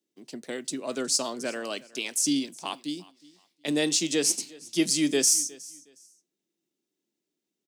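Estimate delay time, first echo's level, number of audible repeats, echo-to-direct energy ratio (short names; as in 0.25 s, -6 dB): 0.364 s, -22.0 dB, 2, -21.5 dB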